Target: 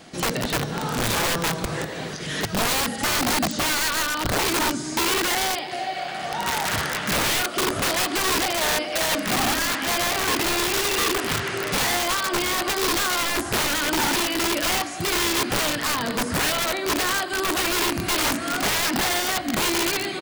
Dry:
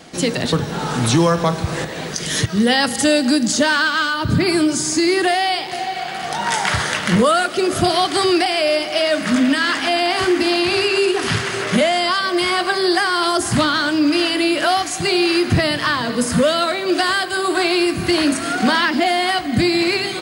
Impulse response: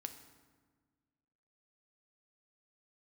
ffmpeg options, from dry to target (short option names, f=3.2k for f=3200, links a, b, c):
-filter_complex "[0:a]asplit=2[a][b];[1:a]atrim=start_sample=2205,atrim=end_sample=6615[c];[b][c]afir=irnorm=-1:irlink=0,volume=-3.5dB[d];[a][d]amix=inputs=2:normalize=0,asplit=3[e][f][g];[f]asetrate=35002,aresample=44100,atempo=1.25992,volume=-13dB[h];[g]asetrate=37084,aresample=44100,atempo=1.18921,volume=-17dB[i];[e][h][i]amix=inputs=3:normalize=0,acrossover=split=3400[j][k];[k]acompressor=threshold=-29dB:ratio=4:attack=1:release=60[l];[j][l]amix=inputs=2:normalize=0,aeval=exprs='(mod(3.16*val(0)+1,2)-1)/3.16':c=same,volume=-7.5dB"